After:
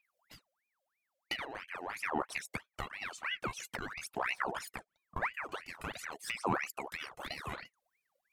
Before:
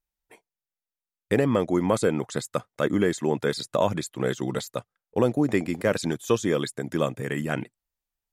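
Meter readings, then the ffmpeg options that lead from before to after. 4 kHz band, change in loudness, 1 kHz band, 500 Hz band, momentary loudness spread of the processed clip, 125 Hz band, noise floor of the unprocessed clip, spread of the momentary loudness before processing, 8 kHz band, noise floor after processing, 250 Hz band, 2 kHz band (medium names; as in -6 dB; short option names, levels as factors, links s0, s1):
-6.5 dB, -13.0 dB, -6.0 dB, -20.0 dB, 9 LU, -19.5 dB, under -85 dBFS, 8 LU, -11.0 dB, under -85 dBFS, -20.5 dB, -4.0 dB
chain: -af "acompressor=threshold=0.0178:ratio=16,aphaser=in_gain=1:out_gain=1:delay=2.4:decay=0.76:speed=0.46:type=triangular,aeval=exprs='val(0)*sin(2*PI*1500*n/s+1500*0.65/3*sin(2*PI*3*n/s))':c=same"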